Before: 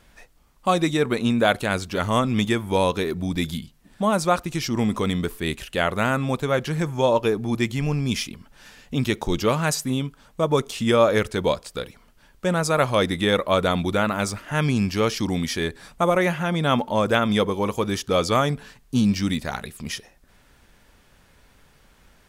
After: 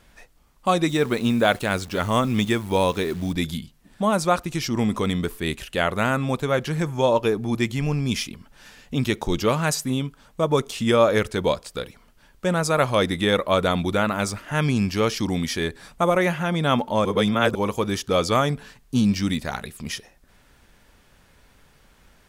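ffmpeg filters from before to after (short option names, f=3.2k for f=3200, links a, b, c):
-filter_complex "[0:a]asettb=1/sr,asplit=3[a][b][c];[a]atrim=end=0.894[d];[b]atrim=start=0.89:end=3.33,asetpts=PTS-STARTPTS,afade=t=in:d=0.004:c=qsin,afade=t=out:st=2.436:d=0.004:c=qsin,acrusher=bits=8:dc=4:mix=0:aa=0.000001[e];[c]atrim=start=3.326[f];[d][e]acrossfade=d=0.004:c1=hsin:c2=qsin[g];[g][f]acrossfade=d=0.004:c1=qsin:c2=hsin,asplit=3[h][i][j];[h]atrim=end=17.052[k];[i]atrim=start=17.048:end=17.552,asetpts=PTS-STARTPTS,areverse[l];[j]atrim=start=17.548[m];[k][l]acrossfade=d=0.004:c1=hsin:c2=hsin[n];[n][m]acrossfade=d=0.004:c1=hsin:c2=hsin"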